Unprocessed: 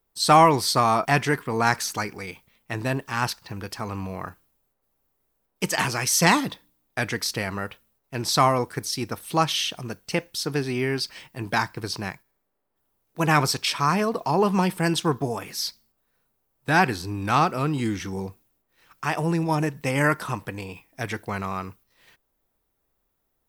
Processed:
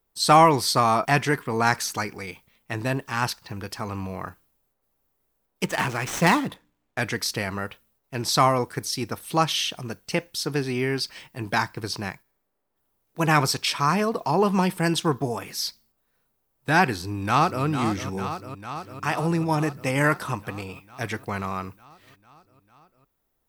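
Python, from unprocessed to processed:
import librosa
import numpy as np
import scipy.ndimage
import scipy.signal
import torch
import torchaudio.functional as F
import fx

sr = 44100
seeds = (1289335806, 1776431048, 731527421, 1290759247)

y = fx.median_filter(x, sr, points=9, at=(5.64, 7.01))
y = fx.echo_throw(y, sr, start_s=16.95, length_s=0.69, ms=450, feedback_pct=75, wet_db=-9.0)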